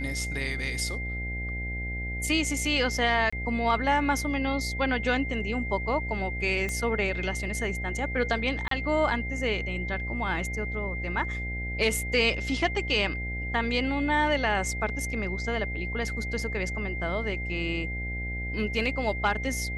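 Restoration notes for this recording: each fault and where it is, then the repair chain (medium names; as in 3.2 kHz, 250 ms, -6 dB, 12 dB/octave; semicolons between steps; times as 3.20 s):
buzz 60 Hz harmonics 14 -34 dBFS
whine 2.1 kHz -34 dBFS
3.30–3.33 s: dropout 25 ms
6.69 s: pop -18 dBFS
8.68–8.71 s: dropout 33 ms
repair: de-click; de-hum 60 Hz, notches 14; band-stop 2.1 kHz, Q 30; interpolate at 3.30 s, 25 ms; interpolate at 8.68 s, 33 ms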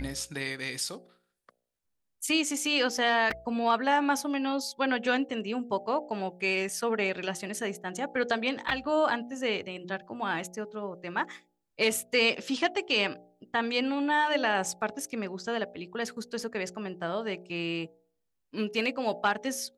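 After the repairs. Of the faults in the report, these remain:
6.69 s: pop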